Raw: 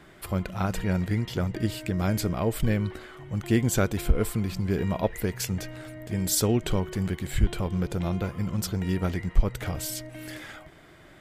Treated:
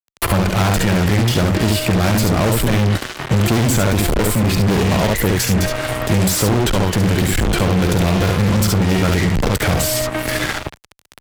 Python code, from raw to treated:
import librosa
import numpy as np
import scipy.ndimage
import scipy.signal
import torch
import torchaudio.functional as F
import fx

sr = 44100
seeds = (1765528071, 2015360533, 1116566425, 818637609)

y = fx.room_early_taps(x, sr, ms=(50, 69), db=(-12.0, -5.0))
y = fx.fuzz(y, sr, gain_db=34.0, gate_db=-41.0)
y = fx.band_squash(y, sr, depth_pct=70)